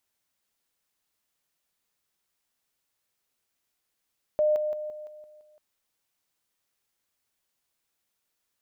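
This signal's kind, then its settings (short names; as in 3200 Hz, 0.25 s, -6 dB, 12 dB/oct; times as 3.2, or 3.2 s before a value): level ladder 607 Hz -19.5 dBFS, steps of -6 dB, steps 7, 0.17 s 0.00 s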